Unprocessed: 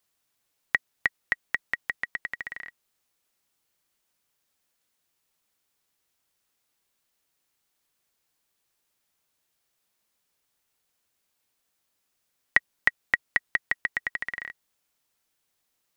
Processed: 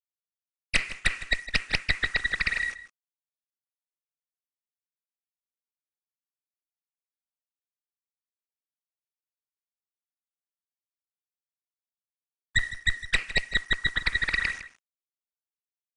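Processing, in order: sine-wave speech; low shelf 330 Hz -7.5 dB; on a send at -10 dB: reverb RT60 1.2 s, pre-delay 3 ms; on the sum: hum 60 Hz, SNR 30 dB; steep high-pass 190 Hz 72 dB/oct; bell 2500 Hz +11.5 dB 0.39 oct; added harmonics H 7 -45 dB, 8 -14 dB, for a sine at -3.5 dBFS; vocal rider within 3 dB 2 s; bit-crush 8-bit; reverse; compressor 8:1, threshold -28 dBFS, peak gain reduction 17 dB; reverse; outdoor echo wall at 27 m, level -14 dB; gain +7 dB; MP3 64 kbps 22050 Hz

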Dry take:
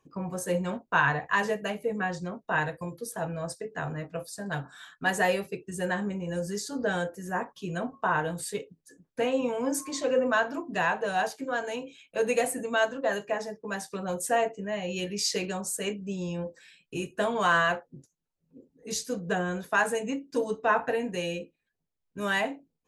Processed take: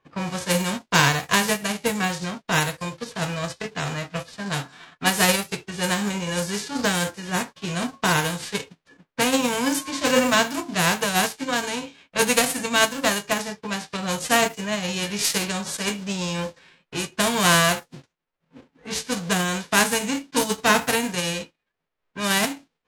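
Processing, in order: spectral whitening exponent 0.3; low-pass opened by the level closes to 2100 Hz, open at -25 dBFS; gain +6 dB

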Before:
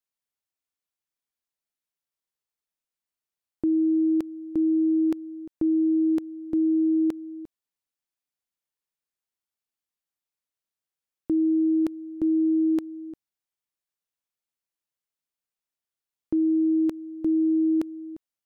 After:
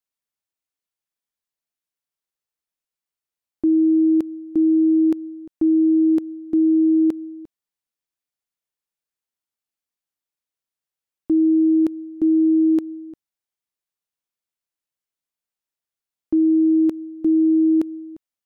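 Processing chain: dynamic EQ 300 Hz, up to +6 dB, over -36 dBFS, Q 0.81

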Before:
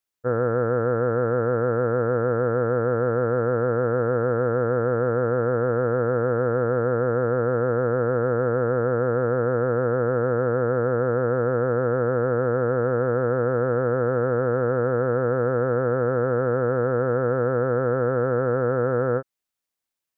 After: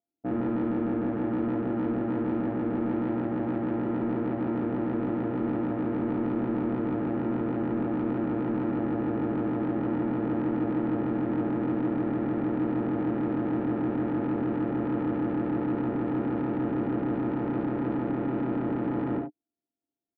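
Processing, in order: sample sorter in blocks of 64 samples; HPF 65 Hz 24 dB/oct; bell 380 Hz +6.5 dB 2.1 oct; in parallel at +0.5 dB: limiter -20 dBFS, peak gain reduction 11.5 dB; on the sum: vocal tract filter u; soft clip -29.5 dBFS, distortion -11 dB; air absorption 140 m; early reflections 56 ms -7 dB, 69 ms -7.5 dB; gain +3.5 dB

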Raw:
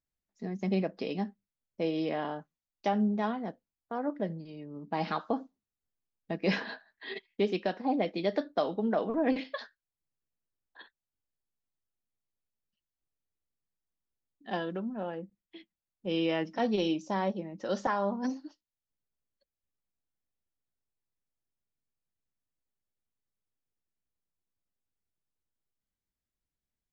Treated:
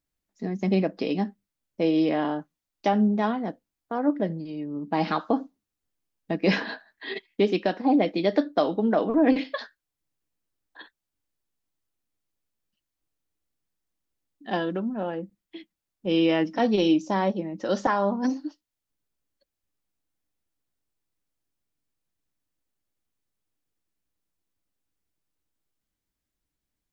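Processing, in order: bell 300 Hz +7 dB 0.22 oct; gain +6 dB

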